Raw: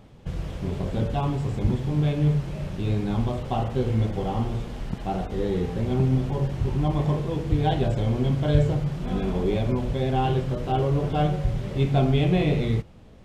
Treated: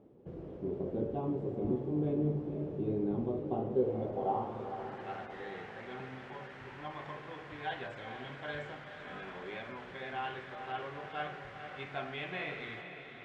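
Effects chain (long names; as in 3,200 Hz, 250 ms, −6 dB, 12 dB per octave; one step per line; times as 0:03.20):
band-pass filter sweep 370 Hz → 1,700 Hz, 0:03.65–0:05.06
feedback delay with all-pass diffusion 480 ms, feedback 55%, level −8.5 dB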